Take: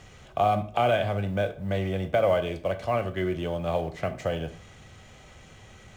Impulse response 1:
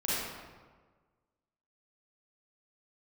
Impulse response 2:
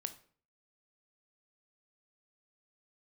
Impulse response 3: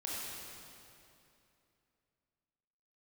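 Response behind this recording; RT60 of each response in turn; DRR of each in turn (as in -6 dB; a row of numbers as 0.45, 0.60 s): 2; 1.5, 0.50, 2.8 s; -9.5, 9.5, -6.0 dB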